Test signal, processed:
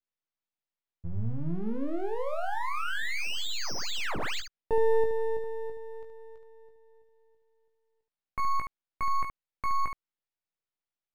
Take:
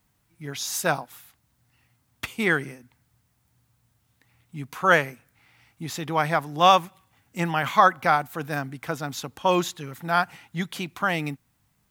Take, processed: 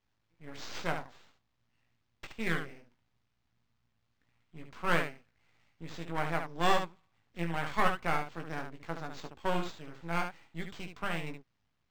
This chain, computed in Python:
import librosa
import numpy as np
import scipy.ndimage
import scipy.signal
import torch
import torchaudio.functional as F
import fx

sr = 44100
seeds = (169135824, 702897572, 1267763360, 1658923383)

p1 = np.maximum(x, 0.0)
p2 = p1 + fx.room_early_taps(p1, sr, ms=(18, 72), db=(-6.0, -6.5), dry=0)
p3 = np.interp(np.arange(len(p2)), np.arange(len(p2))[::4], p2[::4])
y = p3 * 10.0 ** (-9.0 / 20.0)